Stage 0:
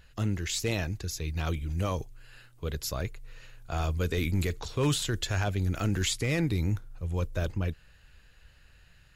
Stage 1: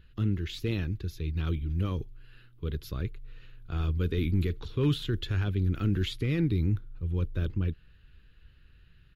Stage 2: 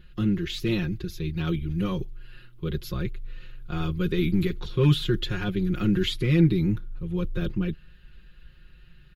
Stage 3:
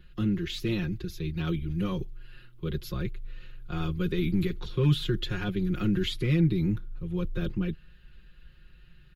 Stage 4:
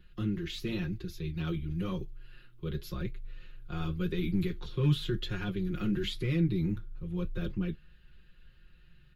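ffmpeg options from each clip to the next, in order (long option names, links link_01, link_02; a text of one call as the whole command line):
ffmpeg -i in.wav -af "firequalizer=gain_entry='entry(380,0);entry(640,-17);entry(1300,-6);entry(2000,-9);entry(3400,-4);entry(5000,-15);entry(7800,-26);entry(11000,-13)':delay=0.05:min_phase=1,volume=1.5dB" out.wav
ffmpeg -i in.wav -af "aecho=1:1:5.6:0.97,volume=3.5dB" out.wav
ffmpeg -i in.wav -filter_complex "[0:a]acrossover=split=200[link_01][link_02];[link_02]acompressor=threshold=-24dB:ratio=6[link_03];[link_01][link_03]amix=inputs=2:normalize=0,volume=-2.5dB" out.wav
ffmpeg -i in.wav -af "flanger=delay=9.9:depth=4.3:regen=-57:speed=0.94:shape=sinusoidal" out.wav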